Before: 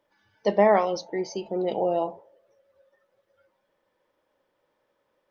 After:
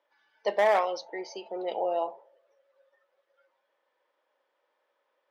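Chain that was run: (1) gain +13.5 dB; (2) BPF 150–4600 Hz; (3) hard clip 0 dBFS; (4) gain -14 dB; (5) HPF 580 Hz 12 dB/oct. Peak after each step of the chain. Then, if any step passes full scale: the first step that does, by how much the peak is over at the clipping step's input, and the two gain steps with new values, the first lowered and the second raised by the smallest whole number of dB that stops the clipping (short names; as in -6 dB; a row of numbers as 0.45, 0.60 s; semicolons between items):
+6.0, +5.0, 0.0, -14.0, -12.0 dBFS; step 1, 5.0 dB; step 1 +8.5 dB, step 4 -9 dB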